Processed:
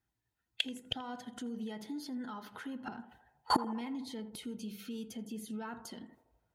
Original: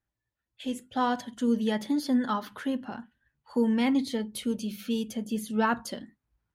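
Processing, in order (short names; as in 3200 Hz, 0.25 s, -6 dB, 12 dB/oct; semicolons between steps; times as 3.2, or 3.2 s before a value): gate with hold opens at -42 dBFS; in parallel at +3 dB: compressor 20:1, threshold -34 dBFS, peak gain reduction 15 dB; on the sum: limiter -22 dBFS, peak gain reduction 9.5 dB; flipped gate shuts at -30 dBFS, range -28 dB; notch comb 570 Hz; on a send: narrowing echo 82 ms, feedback 67%, band-pass 680 Hz, level -12 dB; on the sum: gain +16 dB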